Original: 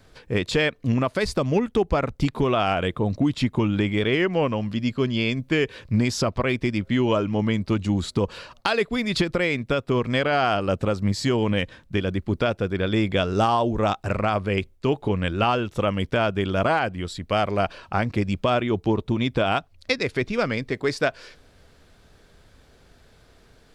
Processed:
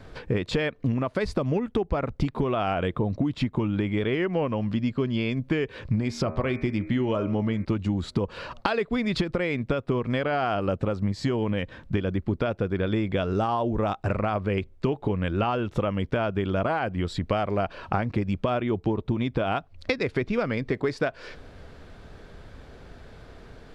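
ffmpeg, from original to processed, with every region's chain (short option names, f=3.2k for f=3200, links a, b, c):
-filter_complex "[0:a]asettb=1/sr,asplit=3[a][b][c];[a]atrim=end=5.964[d];[b]atrim=start=5.96:end=7.65,asetpts=PTS-STARTPTS,afade=t=in:d=0.004:c=qsin,afade=t=out:st=1.686:d=0.004:c=qsin,bandreject=f=1k:w=26,bandreject=f=78.7:t=h:w=4,bandreject=f=157.4:t=h:w=4,bandreject=f=236.1:t=h:w=4,bandreject=f=314.8:t=h:w=4,bandreject=f=393.5:t=h:w=4,bandreject=f=472.2:t=h:w=4,bandreject=f=550.9:t=h:w=4,bandreject=f=629.6:t=h:w=4,bandreject=f=708.3:t=h:w=4,bandreject=f=787:t=h:w=4,bandreject=f=865.7:t=h:w=4,bandreject=f=944.4:t=h:w=4,bandreject=f=1.0231k:t=h:w=4,bandreject=f=1.1018k:t=h:w=4,bandreject=f=1.1805k:t=h:w=4,bandreject=f=1.2592k:t=h:w=4,bandreject=f=1.3379k:t=h:w=4,bandreject=f=1.4166k:t=h:w=4,bandreject=f=1.4953k:t=h:w=4,bandreject=f=1.574k:t=h:w=4,bandreject=f=1.6527k:t=h:w=4,bandreject=f=1.7314k:t=h:w=4,bandreject=f=1.8101k:t=h:w=4,bandreject=f=1.8888k:t=h:w=4,bandreject=f=1.9675k:t=h:w=4,bandreject=f=2.0462k:t=h:w=4,bandreject=f=2.1249k:t=h:w=4,bandreject=f=2.2036k:t=h:w=4,bandreject=f=2.2823k:t=h:w=4,bandreject=f=2.361k:t=h:w=4,bandreject=f=2.4397k:t=h:w=4,bandreject=f=2.5184k:t=h:w=4[e];[c]atrim=start=7.646[f];[d][e]acrossfade=d=0.004:c1=hsin:c2=qsin[g];[g][f]acrossfade=d=0.004:c1=qsin:c2=hsin,lowpass=f=1.9k:p=1,acompressor=threshold=-32dB:ratio=6,volume=9dB"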